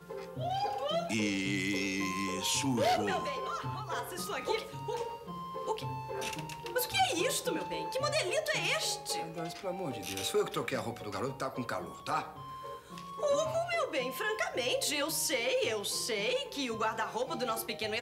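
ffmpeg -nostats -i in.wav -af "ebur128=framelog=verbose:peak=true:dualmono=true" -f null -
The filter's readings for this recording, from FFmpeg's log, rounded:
Integrated loudness:
  I:         -30.4 LUFS
  Threshold: -40.6 LUFS
Loudness range:
  LRA:         4.5 LU
  Threshold: -50.6 LUFS
  LRA low:   -33.4 LUFS
  LRA high:  -28.9 LUFS
True peak:
  Peak:      -18.0 dBFS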